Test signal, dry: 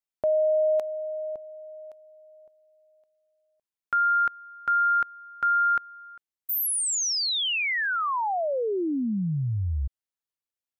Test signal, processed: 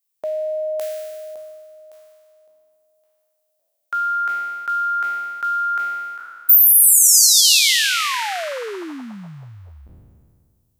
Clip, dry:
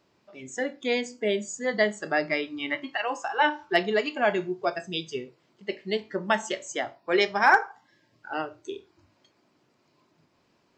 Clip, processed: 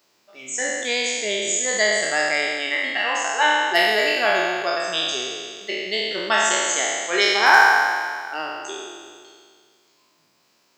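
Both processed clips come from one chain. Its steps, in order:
peak hold with a decay on every bin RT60 2.00 s
RIAA equalisation recording
boost into a limiter +1 dB
level −1 dB

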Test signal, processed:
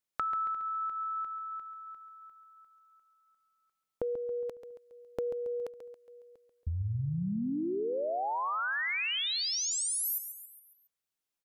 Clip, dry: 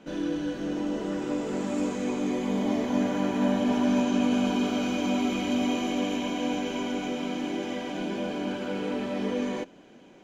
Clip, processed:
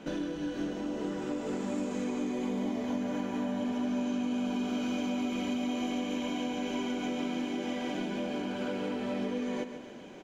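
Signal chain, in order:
downward compressor 10 to 1, threshold −36 dBFS
repeating echo 138 ms, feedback 49%, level −10 dB
level +4.5 dB

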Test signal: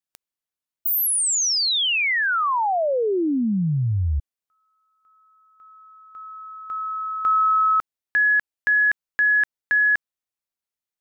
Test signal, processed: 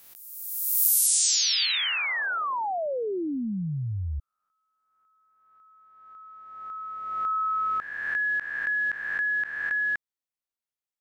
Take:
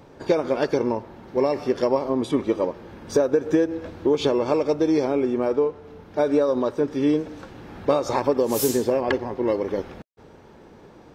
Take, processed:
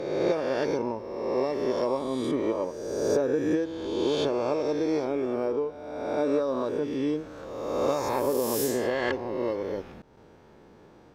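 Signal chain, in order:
peak hold with a rise ahead of every peak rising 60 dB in 1.49 s
level −8.5 dB

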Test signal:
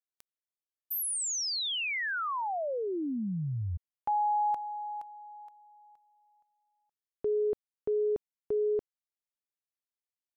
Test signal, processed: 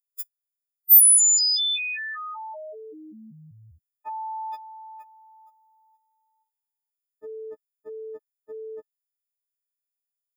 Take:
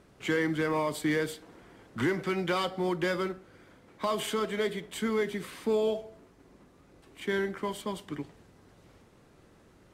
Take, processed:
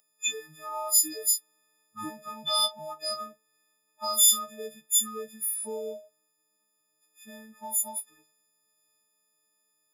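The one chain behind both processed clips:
every partial snapped to a pitch grid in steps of 6 semitones
RIAA equalisation recording
noise reduction from a noise print of the clip's start 21 dB
dynamic equaliser 3,500 Hz, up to +3 dB, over −34 dBFS, Q 2.3
level −4.5 dB

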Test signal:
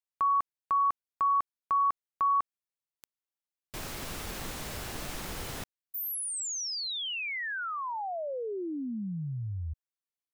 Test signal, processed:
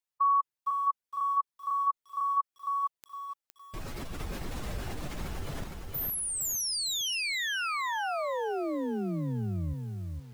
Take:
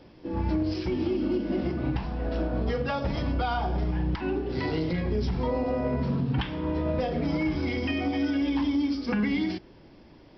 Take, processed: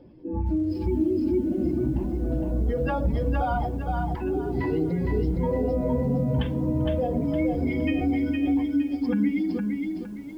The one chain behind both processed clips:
expanding power law on the bin magnitudes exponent 1.7
feedback echo at a low word length 462 ms, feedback 35%, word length 10 bits, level −3.5 dB
level +1.5 dB

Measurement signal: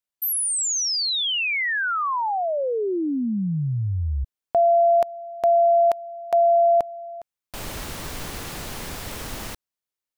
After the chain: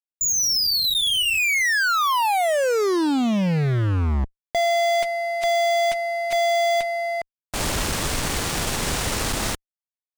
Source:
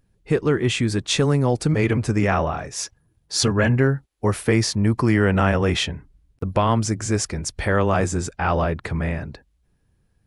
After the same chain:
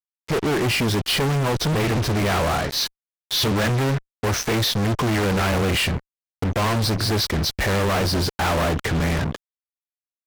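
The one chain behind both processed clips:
hearing-aid frequency compression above 2,100 Hz 1.5 to 1
fuzz pedal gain 38 dB, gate −37 dBFS
level −6 dB

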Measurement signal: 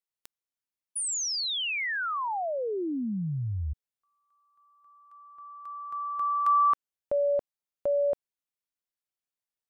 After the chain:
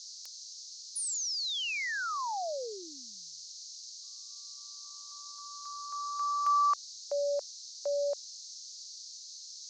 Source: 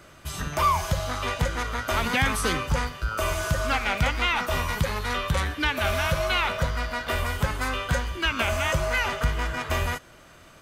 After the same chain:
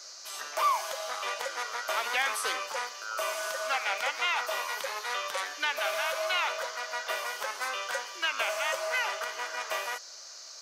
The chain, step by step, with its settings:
noise in a band 4,100–6,700 Hz −43 dBFS
high-pass filter 510 Hz 24 dB per octave
level −4 dB

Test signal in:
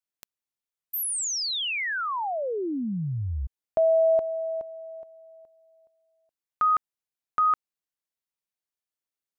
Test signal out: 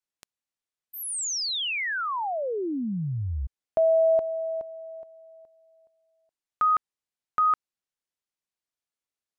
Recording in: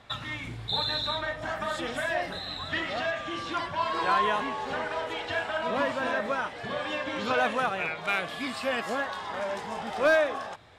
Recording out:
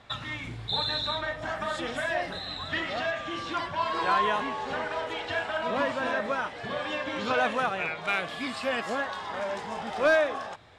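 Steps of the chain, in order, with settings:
low-pass filter 9,700 Hz 12 dB per octave

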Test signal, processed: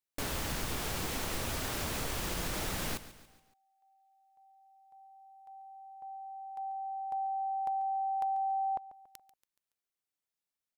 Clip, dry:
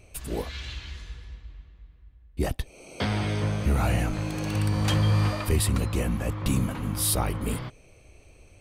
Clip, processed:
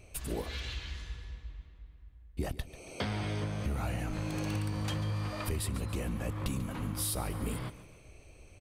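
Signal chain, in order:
downward compressor 6 to 1, threshold −29 dBFS
repeating echo 141 ms, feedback 47%, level −15.5 dB
level −2 dB

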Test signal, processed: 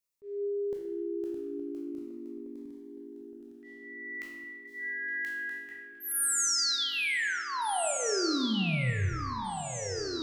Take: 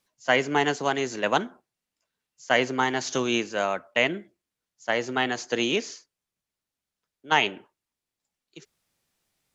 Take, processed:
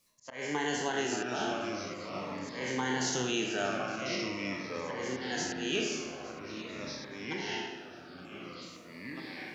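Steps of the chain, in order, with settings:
peak hold with a decay on every bin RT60 0.62 s
high-shelf EQ 4,200 Hz +5.5 dB
notch filter 3,700 Hz, Q 23
brickwall limiter −11.5 dBFS
downward compressor 1.5 to 1, threshold −41 dBFS
volume swells 227 ms
feedback echo with a low-pass in the loop 867 ms, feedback 67%, low-pass 3,600 Hz, level −13 dB
delay with pitch and tempo change per echo 477 ms, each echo −3 semitones, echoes 3, each echo −6 dB
spring reverb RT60 1.2 s, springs 31/40 ms, chirp 55 ms, DRR 4.5 dB
phaser whose notches keep moving one way falling 0.45 Hz

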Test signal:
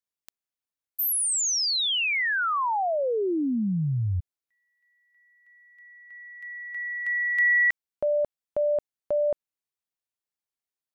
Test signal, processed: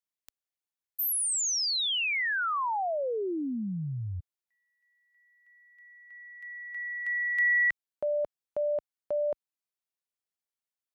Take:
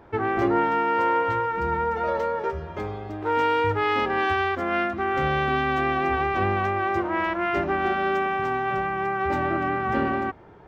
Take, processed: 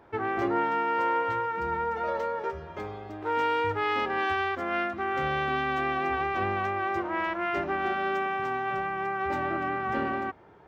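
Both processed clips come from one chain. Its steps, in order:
high-pass filter 52 Hz 6 dB per octave
low-shelf EQ 350 Hz −4.5 dB
level −3.5 dB

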